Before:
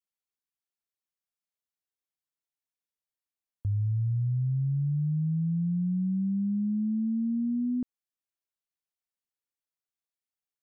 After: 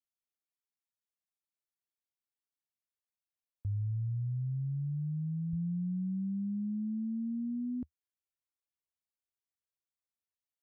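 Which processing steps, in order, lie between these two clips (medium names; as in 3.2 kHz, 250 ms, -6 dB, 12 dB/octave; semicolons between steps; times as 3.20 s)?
peaking EQ 78 Hz +3.5 dB 0.95 oct, from 5.53 s +12.5 dB; trim -8 dB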